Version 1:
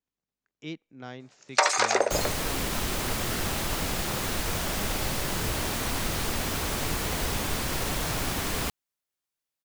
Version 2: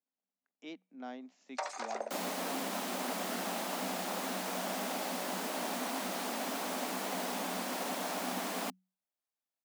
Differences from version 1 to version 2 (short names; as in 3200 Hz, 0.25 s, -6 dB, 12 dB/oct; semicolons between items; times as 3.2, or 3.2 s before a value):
first sound -12.0 dB; master: add rippled Chebyshev high-pass 180 Hz, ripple 9 dB